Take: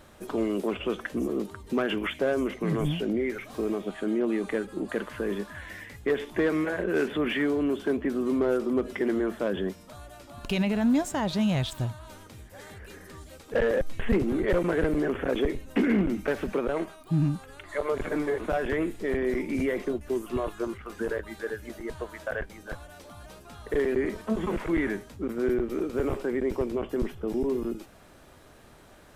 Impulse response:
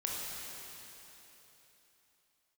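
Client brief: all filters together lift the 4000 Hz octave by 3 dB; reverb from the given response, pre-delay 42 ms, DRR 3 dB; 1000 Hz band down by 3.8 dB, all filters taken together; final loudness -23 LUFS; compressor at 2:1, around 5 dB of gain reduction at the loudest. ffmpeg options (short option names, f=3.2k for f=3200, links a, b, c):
-filter_complex "[0:a]equalizer=f=1k:t=o:g=-5.5,equalizer=f=4k:t=o:g=4.5,acompressor=threshold=-29dB:ratio=2,asplit=2[a][b];[1:a]atrim=start_sample=2205,adelay=42[c];[b][c]afir=irnorm=-1:irlink=0,volume=-7dB[d];[a][d]amix=inputs=2:normalize=0,volume=8dB"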